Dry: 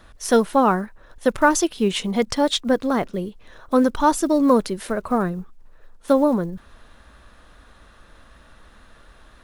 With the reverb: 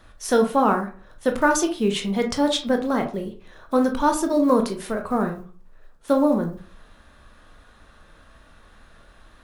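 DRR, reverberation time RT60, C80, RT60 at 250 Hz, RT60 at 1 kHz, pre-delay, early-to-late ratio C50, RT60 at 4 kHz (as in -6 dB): 4.0 dB, 0.40 s, 16.0 dB, 0.40 s, 0.40 s, 16 ms, 10.5 dB, 0.25 s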